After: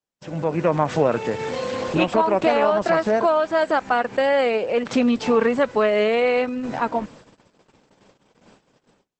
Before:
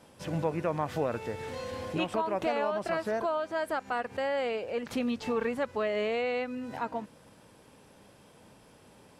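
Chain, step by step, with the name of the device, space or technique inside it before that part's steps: 0.96–2.14 HPF 64 Hz 12 dB/oct; video call (HPF 120 Hz 24 dB/oct; AGC gain up to 12.5 dB; gate -42 dBFS, range -38 dB; Opus 12 kbps 48000 Hz)

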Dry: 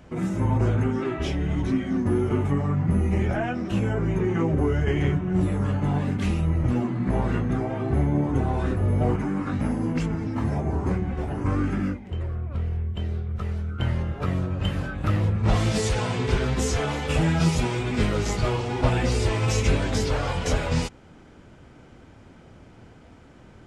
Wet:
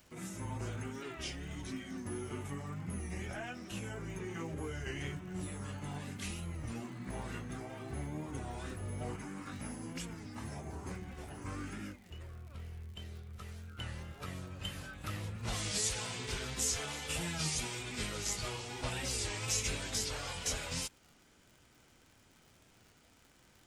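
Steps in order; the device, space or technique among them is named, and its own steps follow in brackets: pre-emphasis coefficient 0.9; warped LP (record warp 33 1/3 rpm, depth 100 cents; crackle 94/s -51 dBFS; pink noise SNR 36 dB); gain +1 dB

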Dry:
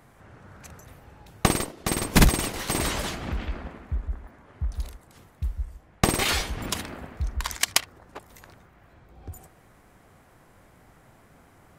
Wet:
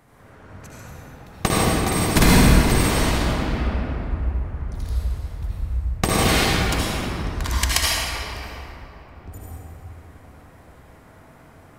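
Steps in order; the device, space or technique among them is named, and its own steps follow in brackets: tunnel (flutter echo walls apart 10.6 m, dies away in 0.32 s; reverb RT60 3.1 s, pre-delay 69 ms, DRR -6.5 dB); gain -1 dB

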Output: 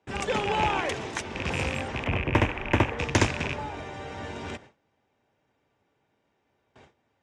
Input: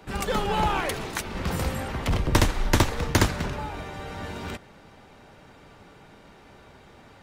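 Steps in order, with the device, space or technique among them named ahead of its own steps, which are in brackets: gate with hold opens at -38 dBFS; car door speaker with a rattle (rattling part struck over -29 dBFS, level -17 dBFS; speaker cabinet 85–7600 Hz, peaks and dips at 180 Hz -7 dB, 1300 Hz -5 dB, 4300 Hz -7 dB); 2.04–2.99 band shelf 6100 Hz -15.5 dB

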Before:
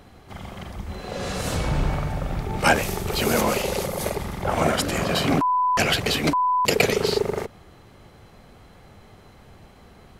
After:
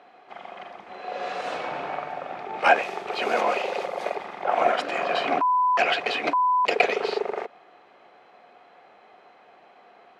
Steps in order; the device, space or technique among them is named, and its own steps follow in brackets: HPF 270 Hz 6 dB/oct; tin-can telephone (BPF 420–2700 Hz; small resonant body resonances 720/2500 Hz, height 9 dB)

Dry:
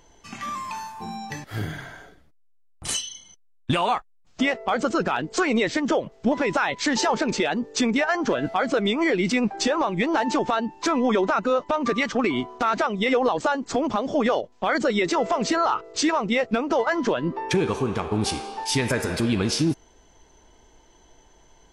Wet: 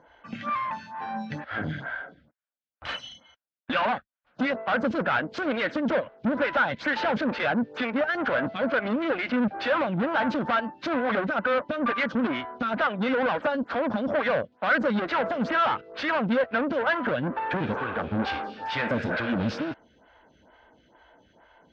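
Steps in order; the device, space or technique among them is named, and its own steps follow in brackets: vibe pedal into a guitar amplifier (photocell phaser 2.2 Hz; tube stage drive 29 dB, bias 0.6; speaker cabinet 77–3600 Hz, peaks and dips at 230 Hz +4 dB, 390 Hz -9 dB, 560 Hz +6 dB, 1500 Hz +10 dB); gain +5.5 dB

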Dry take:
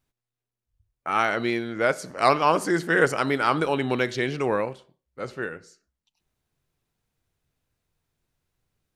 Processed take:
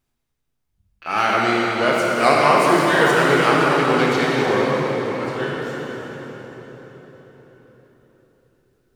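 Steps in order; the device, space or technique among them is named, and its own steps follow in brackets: shimmer-style reverb (harmoniser +12 st -11 dB; reverb RT60 4.8 s, pre-delay 21 ms, DRR -4.5 dB); gain +1 dB

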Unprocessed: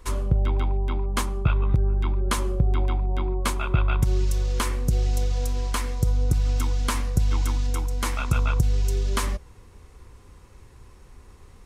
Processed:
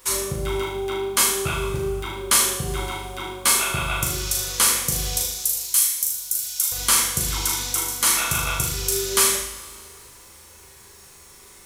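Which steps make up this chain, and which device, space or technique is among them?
turntable without a phono preamp (RIAA curve recording; white noise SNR 34 dB); 5.22–6.72 pre-emphasis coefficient 0.97; flutter echo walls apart 6.6 m, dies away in 0.59 s; two-slope reverb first 0.43 s, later 2.4 s, from -18 dB, DRR -1 dB

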